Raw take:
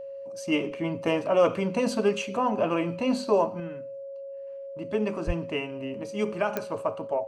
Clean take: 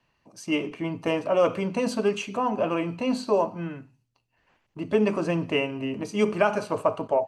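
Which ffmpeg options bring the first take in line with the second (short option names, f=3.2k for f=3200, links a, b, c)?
-filter_complex "[0:a]adeclick=t=4,bandreject=f=550:w=30,asplit=3[a][b][c];[a]afade=t=out:st=5.26:d=0.02[d];[b]highpass=f=140:w=0.5412,highpass=f=140:w=1.3066,afade=t=in:st=5.26:d=0.02,afade=t=out:st=5.38:d=0.02[e];[c]afade=t=in:st=5.38:d=0.02[f];[d][e][f]amix=inputs=3:normalize=0,asetnsamples=n=441:p=0,asendcmd='3.6 volume volume 5.5dB',volume=0dB"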